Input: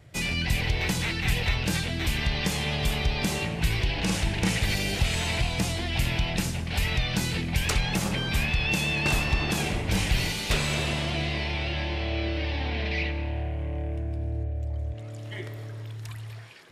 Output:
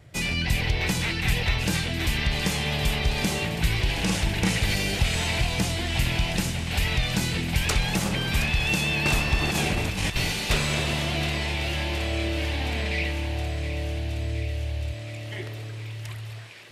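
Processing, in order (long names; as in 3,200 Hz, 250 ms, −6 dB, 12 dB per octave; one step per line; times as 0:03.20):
0:09.41–0:10.16: compressor whose output falls as the input rises −27 dBFS, ratio −0.5
feedback echo with a high-pass in the loop 719 ms, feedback 77%, high-pass 690 Hz, level −11 dB
level +1.5 dB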